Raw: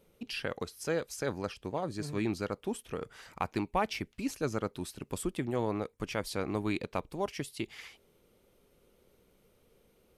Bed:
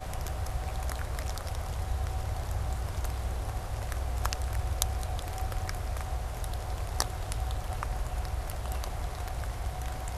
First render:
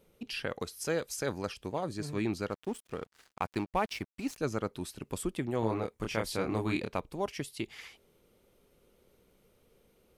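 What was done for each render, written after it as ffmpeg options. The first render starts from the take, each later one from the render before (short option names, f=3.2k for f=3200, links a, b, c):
-filter_complex "[0:a]asettb=1/sr,asplit=3[a][b][c];[a]atrim=end=0.614[d];[b]atrim=start=0.61:end=1.94,asetpts=PTS-STARTPTS,afade=t=in:d=0.004:c=qsin,afade=t=out:st=1.326:d=0.004:c=qsin,highshelf=f=4.1k:g=5[e];[c]atrim=start=1.936[f];[d][e]acrossfade=d=0.004:c1=hsin:c2=qsin[g];[g][f]acrossfade=d=0.004:c1=qsin:c2=hsin,asettb=1/sr,asplit=3[h][i][j];[h]atrim=end=2.504[k];[i]atrim=start=2.5:end=4.38,asetpts=PTS-STARTPTS,afade=t=in:d=0.004:c=qsin,afade=t=out:st=1.876:d=0.004:c=qsin,aeval=exprs='sgn(val(0))*max(abs(val(0))-0.00335,0)':c=same[l];[j]atrim=start=4.376[m];[k][l]acrossfade=d=0.004:c1=hsin:c2=qsin[n];[n][m]acrossfade=d=0.004:c1=qsin:c2=hsin,asettb=1/sr,asplit=3[o][p][q];[o]atrim=end=5.604[r];[p]atrim=start=5.6:end=6.94,asetpts=PTS-STARTPTS,afade=t=in:d=0.004:c=qsin,afade=t=out:st=1.336:d=0.004:c=qsin,asplit=2[s][t];[t]adelay=27,volume=-3dB[u];[s][u]amix=inputs=2:normalize=0,atrim=end_sample=59094[v];[q]atrim=start=6.936[w];[r][v]acrossfade=d=0.004:c1=hsin:c2=qsin[x];[x][w]acrossfade=d=0.004:c1=qsin:c2=hsin"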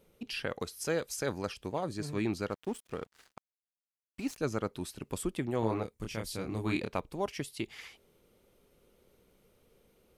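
-filter_complex "[0:a]asettb=1/sr,asplit=3[a][b][c];[a]atrim=end=5.834[d];[b]atrim=start=5.83:end=6.64,asetpts=PTS-STARTPTS,afade=t=in:d=0.004:c=qsin,afade=t=out:st=0.806:d=0.004:c=qsin,equalizer=f=990:w=0.34:g=-9[e];[c]atrim=start=6.636[f];[d][e]acrossfade=d=0.004:c1=hsin:c2=qsin[g];[g][f]acrossfade=d=0.004:c1=qsin:c2=hsin,asplit=3[h][i][j];[h]atrim=end=3.4,asetpts=PTS-STARTPTS,afade=t=out:st=3.396:d=0.004:c=hsin[k];[i]atrim=start=3.4:end=4.14,asetpts=PTS-STARTPTS,volume=0[l];[j]atrim=start=4.14,asetpts=PTS-STARTPTS,afade=t=in:d=0.004:c=hsin[m];[k][l][m]concat=n=3:v=0:a=1"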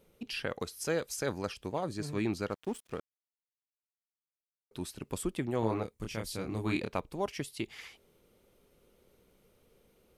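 -filter_complex "[0:a]asplit=3[a][b][c];[a]atrim=end=3,asetpts=PTS-STARTPTS,afade=t=out:st=2.996:d=0.004:c=hsin[d];[b]atrim=start=3:end=4.71,asetpts=PTS-STARTPTS,volume=0[e];[c]atrim=start=4.71,asetpts=PTS-STARTPTS,afade=t=in:d=0.004:c=hsin[f];[d][e][f]concat=n=3:v=0:a=1"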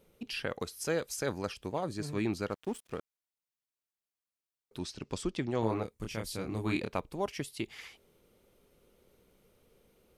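-filter_complex "[0:a]asettb=1/sr,asplit=3[a][b][c];[a]atrim=end=4.794[d];[b]atrim=start=4.79:end=5.62,asetpts=PTS-STARTPTS,afade=t=in:d=0.004:c=qsin,afade=t=out:st=0.826:d=0.004:c=qsin,lowpass=f=5.5k:t=q:w=2.2[e];[c]atrim=start=5.616[f];[d][e]acrossfade=d=0.004:c1=hsin:c2=qsin[g];[g][f]acrossfade=d=0.004:c1=qsin:c2=hsin"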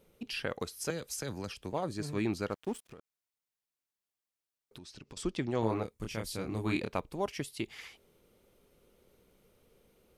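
-filter_complex "[0:a]asettb=1/sr,asplit=3[a][b][c];[a]atrim=end=0.904[d];[b]atrim=start=0.9:end=1.73,asetpts=PTS-STARTPTS,afade=t=in:d=0.004:c=qsin,afade=t=out:st=0.826:d=0.004:c=qsin,acrossover=split=240|3000[e][f][g];[f]acompressor=threshold=-38dB:ratio=6:attack=3.2:release=140:knee=2.83:detection=peak[h];[e][h][g]amix=inputs=3:normalize=0[i];[c]atrim=start=1.726[j];[d][i]acrossfade=d=0.004:c1=hsin:c2=qsin[k];[k][j]acrossfade=d=0.004:c1=qsin:c2=hsin,asettb=1/sr,asplit=3[l][m][n];[l]atrim=end=2.924[o];[m]atrim=start=2.92:end=5.17,asetpts=PTS-STARTPTS,afade=t=in:d=0.004:c=qsin,afade=t=out:st=2.246:d=0.004:c=qsin,acompressor=threshold=-45dB:ratio=16:attack=3.2:release=140:knee=1:detection=peak[p];[n]atrim=start=5.166[q];[o][p]acrossfade=d=0.004:c1=hsin:c2=qsin[r];[r][q]acrossfade=d=0.004:c1=qsin:c2=hsin"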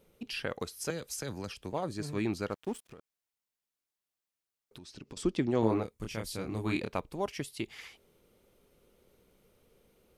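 -filter_complex "[0:a]asettb=1/sr,asplit=3[a][b][c];[a]atrim=end=4.884[d];[b]atrim=start=4.88:end=5.81,asetpts=PTS-STARTPTS,afade=t=in:d=0.004:c=qsin,afade=t=out:st=0.926:d=0.004:c=qsin,equalizer=f=280:w=0.8:g=5.5[e];[c]atrim=start=5.806[f];[d][e]acrossfade=d=0.004:c1=hsin:c2=qsin[g];[g][f]acrossfade=d=0.004:c1=qsin:c2=hsin"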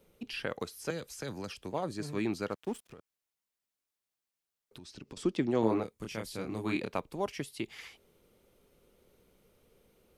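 -filter_complex "[0:a]acrossover=split=120|3400[a][b][c];[a]acompressor=threshold=-55dB:ratio=6[d];[c]alimiter=level_in=14.5dB:limit=-24dB:level=0:latency=1,volume=-14.5dB[e];[d][b][e]amix=inputs=3:normalize=0"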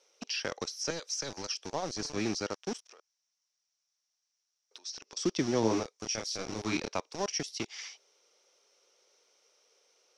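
-filter_complex "[0:a]acrossover=split=470|4000[a][b][c];[a]aeval=exprs='val(0)*gte(abs(val(0)),0.015)':c=same[d];[d][b][c]amix=inputs=3:normalize=0,lowpass=f=5.7k:t=q:w=10"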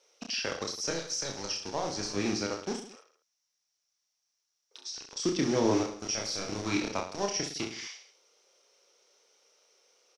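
-af "aecho=1:1:30|66|109.2|161|223.2:0.631|0.398|0.251|0.158|0.1"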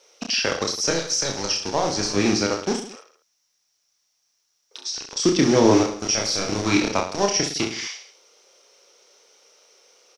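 -af "volume=10.5dB"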